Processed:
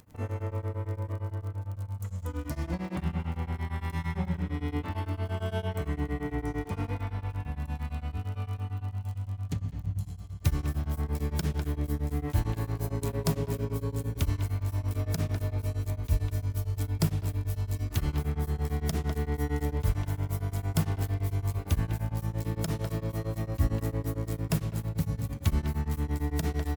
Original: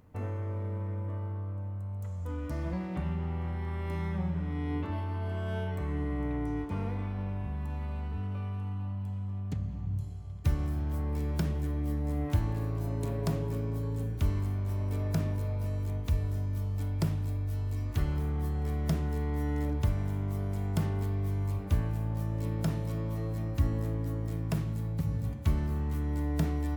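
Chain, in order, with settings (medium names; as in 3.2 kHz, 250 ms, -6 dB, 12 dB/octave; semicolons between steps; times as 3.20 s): crackle 51 per s -49 dBFS; treble shelf 3.4 kHz +8.5 dB; de-hum 65.16 Hz, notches 9; speakerphone echo 200 ms, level -7 dB; tremolo of two beating tones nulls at 8.8 Hz; trim +4 dB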